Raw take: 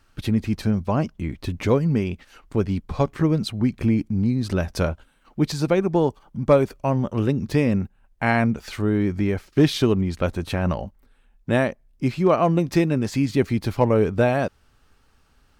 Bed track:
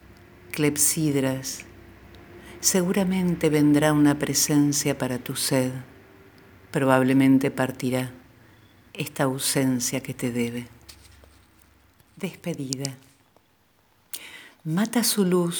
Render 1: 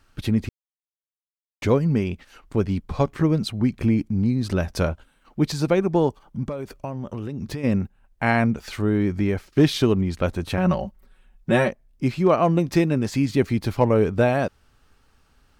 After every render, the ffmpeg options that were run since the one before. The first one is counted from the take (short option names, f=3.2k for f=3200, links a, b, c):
-filter_complex "[0:a]asplit=3[a][b][c];[a]afade=t=out:st=6.43:d=0.02[d];[b]acompressor=threshold=-25dB:ratio=20:attack=3.2:release=140:knee=1:detection=peak,afade=t=in:st=6.43:d=0.02,afade=t=out:st=7.63:d=0.02[e];[c]afade=t=in:st=7.63:d=0.02[f];[d][e][f]amix=inputs=3:normalize=0,asettb=1/sr,asplit=3[g][h][i];[g]atrim=end=10.574[j];[h]atrim=start=10.57:end=11.69,asetpts=PTS-STARTPTS,afade=t=in:d=0.004:c=qsin,afade=t=out:st=1.116:d=0.004:c=qsin,aecho=1:1:5.4:0.83,atrim=end_sample=49392[k];[i]atrim=start=11.686[l];[j][k]acrossfade=d=0.004:c1=hsin:c2=qsin[m];[m][l]acrossfade=d=0.004:c1=qsin:c2=hsin,asplit=3[n][o][p];[n]atrim=end=0.49,asetpts=PTS-STARTPTS,afade=t=out:st=0.486:d=0.004:c=hsin[q];[o]atrim=start=0.49:end=1.62,asetpts=PTS-STARTPTS,volume=0[r];[p]atrim=start=1.62,asetpts=PTS-STARTPTS,afade=t=in:d=0.004:c=hsin[s];[q][r][s]concat=n=3:v=0:a=1"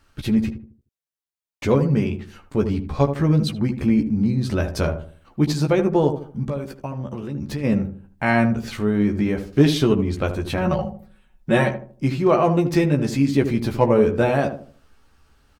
-filter_complex "[0:a]asplit=2[a][b];[b]adelay=14,volume=-5dB[c];[a][c]amix=inputs=2:normalize=0,asplit=2[d][e];[e]adelay=77,lowpass=f=850:p=1,volume=-7dB,asplit=2[f][g];[g]adelay=77,lowpass=f=850:p=1,volume=0.39,asplit=2[h][i];[i]adelay=77,lowpass=f=850:p=1,volume=0.39,asplit=2[j][k];[k]adelay=77,lowpass=f=850:p=1,volume=0.39,asplit=2[l][m];[m]adelay=77,lowpass=f=850:p=1,volume=0.39[n];[f][h][j][l][n]amix=inputs=5:normalize=0[o];[d][o]amix=inputs=2:normalize=0"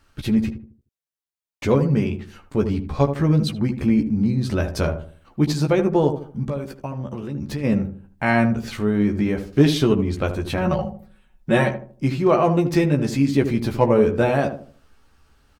-af anull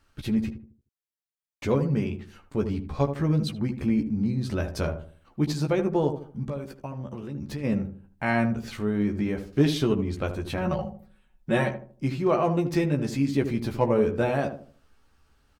-af "volume=-6dB"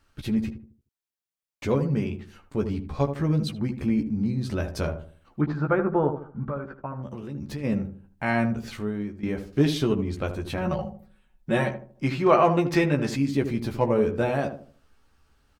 -filter_complex "[0:a]asettb=1/sr,asplit=3[a][b][c];[a]atrim=end=5.414[d];[b]atrim=start=5.41:end=7.03,asetpts=PTS-STARTPTS,afade=t=in:d=0.004:c=qsin,afade=t=out:st=1.616:d=0.004:c=qsin,lowpass=f=1.4k:t=q:w=4[e];[c]atrim=start=7.026[f];[d][e]acrossfade=d=0.004:c1=hsin:c2=qsin[g];[g][f]acrossfade=d=0.004:c1=qsin:c2=hsin,asettb=1/sr,asplit=3[h][i][j];[h]atrim=end=11.954[k];[i]atrim=start=11.95:end=13.16,asetpts=PTS-STARTPTS,afade=t=in:d=0.004:c=qsin,afade=t=out:st=1.206:d=0.004:c=qsin,equalizer=f=1.6k:w=0.37:g=8.5[l];[j]atrim=start=13.156[m];[k][l]acrossfade=d=0.004:c1=hsin:c2=qsin[n];[n][m]acrossfade=d=0.004:c1=qsin:c2=hsin,asplit=2[o][p];[o]atrim=end=9.23,asetpts=PTS-STARTPTS,afade=t=out:st=8.72:d=0.51:silence=0.158489[q];[p]atrim=start=9.23,asetpts=PTS-STARTPTS,afade=t=in:d=0.004:c=hsin:silence=0.158489[r];[q][r]concat=n=2:v=0:a=1"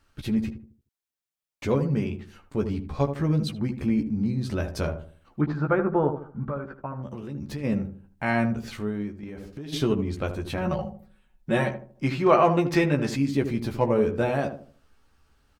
-filter_complex "[0:a]asplit=3[a][b][c];[a]afade=t=out:st=9.15:d=0.02[d];[b]acompressor=threshold=-34dB:ratio=10:attack=3.2:release=140:knee=1:detection=peak,afade=t=in:st=9.15:d=0.02,afade=t=out:st=9.72:d=0.02[e];[c]afade=t=in:st=9.72:d=0.02[f];[d][e][f]amix=inputs=3:normalize=0"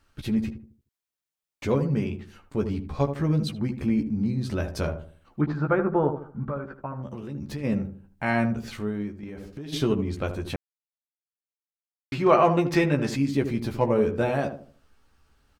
-filter_complex "[0:a]asplit=3[a][b][c];[a]atrim=end=10.56,asetpts=PTS-STARTPTS,afade=t=out:st=10.556:d=0.004:c=hsin[d];[b]atrim=start=10.56:end=12.12,asetpts=PTS-STARTPTS,volume=0[e];[c]atrim=start=12.12,asetpts=PTS-STARTPTS,afade=t=in:d=0.004:c=hsin[f];[d][e][f]concat=n=3:v=0:a=1"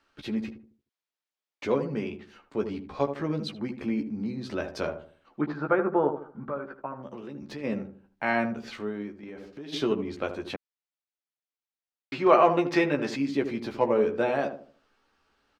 -filter_complex "[0:a]acrossover=split=230 5900:gain=0.141 1 0.178[a][b][c];[a][b][c]amix=inputs=3:normalize=0"